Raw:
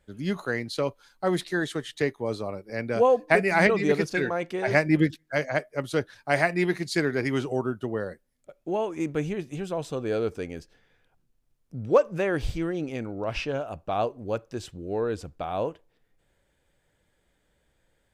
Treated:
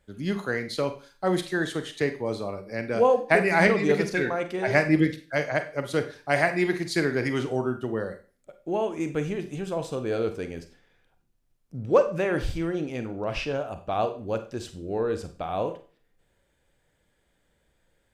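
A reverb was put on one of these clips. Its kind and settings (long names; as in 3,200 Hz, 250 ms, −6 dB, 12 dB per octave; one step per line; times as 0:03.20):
four-comb reverb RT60 0.38 s, combs from 32 ms, DRR 8.5 dB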